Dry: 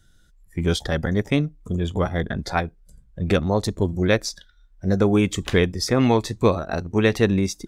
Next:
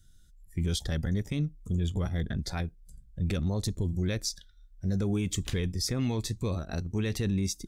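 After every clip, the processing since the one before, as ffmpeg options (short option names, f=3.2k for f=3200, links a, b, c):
-af "equalizer=f=860:w=0.33:g=-14.5,alimiter=limit=-20.5dB:level=0:latency=1:release=11"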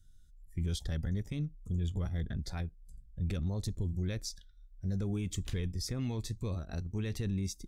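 -af "lowshelf=f=96:g=8.5,volume=-8dB"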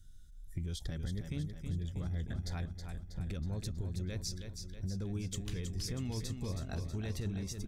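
-filter_complex "[0:a]acompressor=threshold=-40dB:ratio=6,asplit=2[a][b];[b]aecho=0:1:321|642|963|1284|1605|1926|2247:0.447|0.255|0.145|0.0827|0.0472|0.0269|0.0153[c];[a][c]amix=inputs=2:normalize=0,volume=4.5dB"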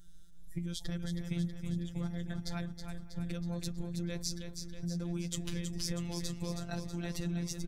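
-filter_complex "[0:a]asplit=2[a][b];[b]adelay=513.1,volume=-22dB,highshelf=f=4k:g=-11.5[c];[a][c]amix=inputs=2:normalize=0,afftfilt=real='hypot(re,im)*cos(PI*b)':imag='0':win_size=1024:overlap=0.75,volume=6.5dB"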